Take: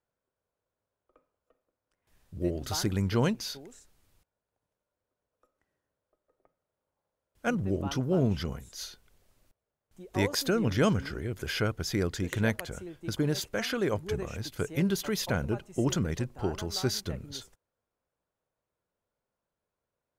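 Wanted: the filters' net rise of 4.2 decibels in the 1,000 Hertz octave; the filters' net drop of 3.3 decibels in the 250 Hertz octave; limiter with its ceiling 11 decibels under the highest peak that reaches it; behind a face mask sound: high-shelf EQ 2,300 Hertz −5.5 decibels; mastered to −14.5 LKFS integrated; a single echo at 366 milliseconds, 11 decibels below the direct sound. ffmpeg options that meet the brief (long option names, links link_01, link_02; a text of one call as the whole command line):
ffmpeg -i in.wav -af "equalizer=frequency=250:width_type=o:gain=-5,equalizer=frequency=1000:width_type=o:gain=7,alimiter=limit=-23.5dB:level=0:latency=1,highshelf=frequency=2300:gain=-5.5,aecho=1:1:366:0.282,volume=21.5dB" out.wav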